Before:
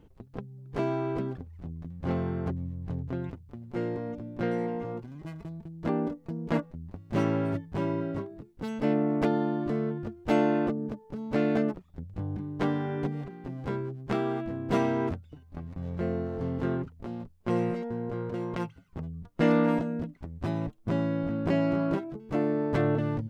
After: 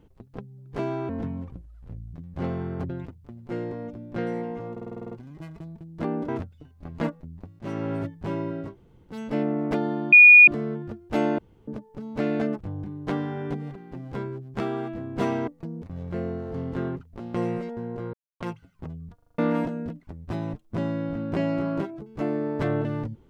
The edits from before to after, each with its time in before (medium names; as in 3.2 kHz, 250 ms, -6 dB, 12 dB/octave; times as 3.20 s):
1.09–1.80 s: speed 68%
2.56–3.14 s: delete
4.96 s: stutter 0.05 s, 9 plays
6.13–6.49 s: swap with 15.00–15.70 s
7.10–7.45 s: fade in, from -12 dB
8.20–8.62 s: room tone, crossfade 0.16 s
9.63 s: add tone 2.45 kHz -7 dBFS 0.35 s
10.54–10.83 s: room tone
11.76–12.13 s: delete
17.21–17.48 s: delete
18.27–18.54 s: mute
19.28 s: stutter in place 0.04 s, 6 plays